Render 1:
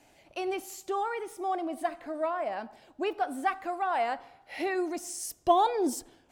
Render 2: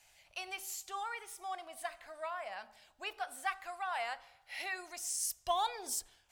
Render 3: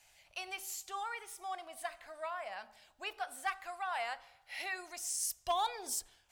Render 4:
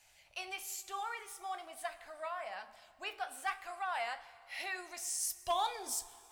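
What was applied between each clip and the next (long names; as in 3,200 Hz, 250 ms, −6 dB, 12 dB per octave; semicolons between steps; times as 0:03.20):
guitar amp tone stack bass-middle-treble 10-0-10; hum removal 55.33 Hz, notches 12; level +2 dB
gain into a clipping stage and back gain 25.5 dB
flanger 1.1 Hz, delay 9.6 ms, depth 7.4 ms, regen −63%; dense smooth reverb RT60 2.5 s, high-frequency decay 0.85×, DRR 16 dB; level +4 dB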